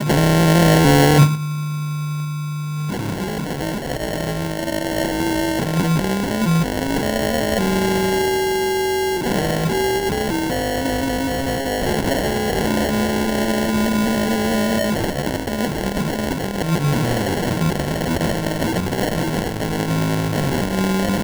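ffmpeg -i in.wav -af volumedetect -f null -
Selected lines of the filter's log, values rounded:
mean_volume: -19.1 dB
max_volume: -4.2 dB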